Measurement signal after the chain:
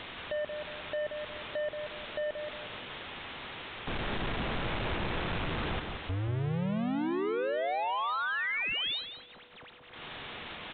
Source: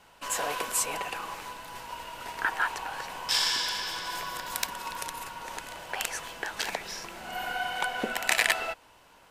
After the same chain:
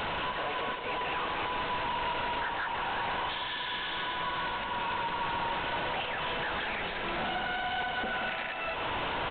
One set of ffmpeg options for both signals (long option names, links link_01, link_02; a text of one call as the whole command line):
ffmpeg -i in.wav -filter_complex "[0:a]aeval=exprs='val(0)+0.5*0.0531*sgn(val(0))':channel_layout=same,acompressor=threshold=-30dB:ratio=6,aresample=8000,volume=31.5dB,asoftclip=hard,volume=-31.5dB,aresample=44100,asplit=2[link_01][link_02];[link_02]adelay=179,lowpass=frequency=2100:poles=1,volume=-5.5dB,asplit=2[link_03][link_04];[link_04]adelay=179,lowpass=frequency=2100:poles=1,volume=0.4,asplit=2[link_05][link_06];[link_06]adelay=179,lowpass=frequency=2100:poles=1,volume=0.4,asplit=2[link_07][link_08];[link_08]adelay=179,lowpass=frequency=2100:poles=1,volume=0.4,asplit=2[link_09][link_10];[link_10]adelay=179,lowpass=frequency=2100:poles=1,volume=0.4[link_11];[link_01][link_03][link_05][link_07][link_09][link_11]amix=inputs=6:normalize=0,aeval=exprs='val(0)+0.000891*sin(2*PI*490*n/s)':channel_layout=same" out.wav